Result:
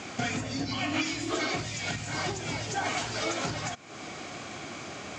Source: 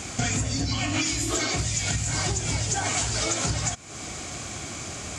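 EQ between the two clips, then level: Bessel high-pass 220 Hz, order 2; air absorption 160 m; 0.0 dB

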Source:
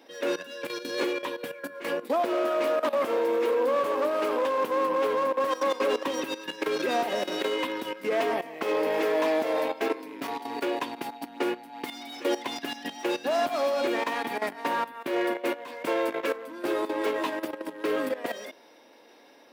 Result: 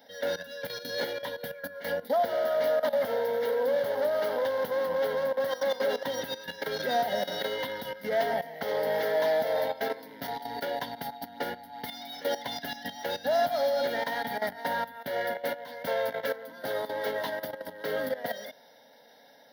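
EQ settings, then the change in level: low shelf 200 Hz +12 dB; high shelf 8500 Hz +9.5 dB; fixed phaser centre 1700 Hz, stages 8; 0.0 dB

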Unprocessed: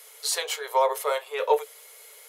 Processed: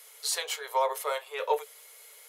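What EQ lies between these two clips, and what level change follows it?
low shelf 300 Hz -11.5 dB; -3.0 dB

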